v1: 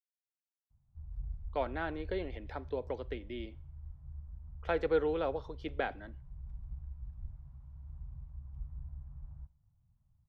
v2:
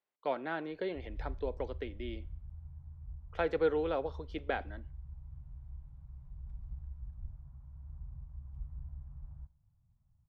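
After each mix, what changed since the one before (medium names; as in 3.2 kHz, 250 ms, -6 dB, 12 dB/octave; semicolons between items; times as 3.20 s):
speech: entry -1.30 s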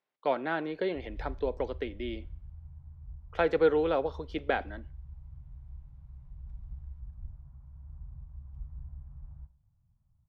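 speech +5.5 dB; background: send +6.0 dB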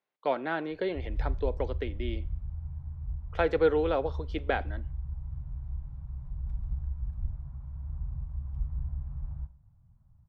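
background +9.5 dB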